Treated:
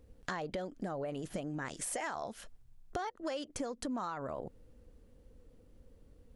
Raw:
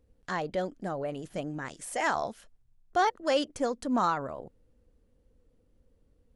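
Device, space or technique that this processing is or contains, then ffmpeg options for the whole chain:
serial compression, peaks first: -af "acompressor=threshold=-37dB:ratio=4,acompressor=threshold=-43dB:ratio=3,volume=6.5dB"

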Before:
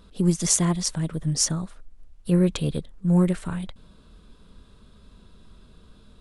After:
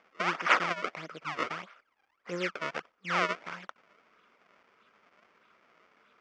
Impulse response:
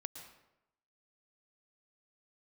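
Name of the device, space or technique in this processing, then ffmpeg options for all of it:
circuit-bent sampling toy: -af "acrusher=samples=31:mix=1:aa=0.000001:lfo=1:lforange=49.6:lforate=1.6,highpass=600,equalizer=frequency=850:width_type=q:width=4:gain=-3,equalizer=frequency=1300:width_type=q:width=4:gain=7,equalizer=frequency=2200:width_type=q:width=4:gain=6,equalizer=frequency=4000:width_type=q:width=4:gain=-9,lowpass=frequency=5000:width=0.5412,lowpass=frequency=5000:width=1.3066,volume=-2.5dB"

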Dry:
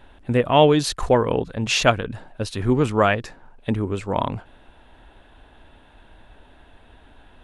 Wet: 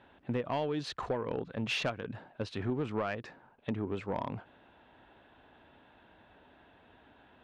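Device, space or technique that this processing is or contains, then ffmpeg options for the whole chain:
AM radio: -af "highpass=120,lowpass=3400,acompressor=threshold=-21dB:ratio=10,asoftclip=type=tanh:threshold=-17dB,volume=-6.5dB"

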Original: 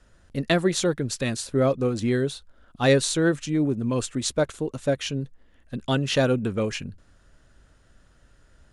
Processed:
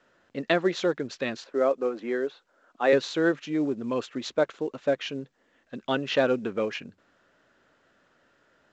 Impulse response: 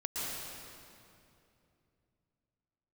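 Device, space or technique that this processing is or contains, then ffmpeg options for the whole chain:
telephone: -filter_complex "[0:a]asettb=1/sr,asplit=3[link_01][link_02][link_03];[link_01]atrim=end=1.444[link_04];[link_02]atrim=start=1.44:end=2.93,asetpts=PTS-STARTPTS,afade=type=in:duration=0.004:curve=qsin,afade=type=out:start_time=1.486:duration=0.004:curve=qsin,acrossover=split=250 2400:gain=0.0708 1 0.251[link_05][link_06][link_07];[link_05][link_06][link_07]amix=inputs=3:normalize=0[link_08];[link_03]atrim=start=2.926[link_09];[link_04][link_08]acrossfade=duration=0.004:curve1=hsin:curve2=qsin[link_10];[link_10][link_09]acrossfade=duration=0.004:curve1=qsin:curve2=hsin,highpass=300,lowpass=3100" -ar 16000 -c:a pcm_mulaw

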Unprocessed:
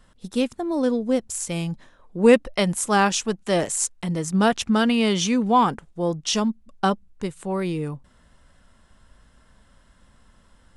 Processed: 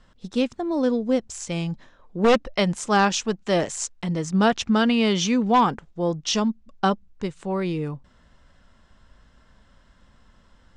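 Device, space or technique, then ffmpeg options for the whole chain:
synthesiser wavefolder: -af "aeval=exprs='0.316*(abs(mod(val(0)/0.316+3,4)-2)-1)':channel_layout=same,lowpass=frequency=6800:width=0.5412,lowpass=frequency=6800:width=1.3066"

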